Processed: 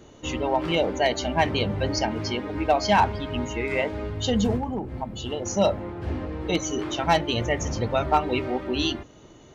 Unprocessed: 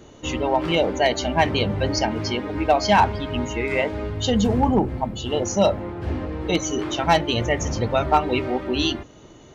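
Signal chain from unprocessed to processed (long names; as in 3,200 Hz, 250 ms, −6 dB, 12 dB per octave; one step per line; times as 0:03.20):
0:04.56–0:05.46: downward compressor 6 to 1, threshold −23 dBFS, peak gain reduction 9.5 dB
level −3 dB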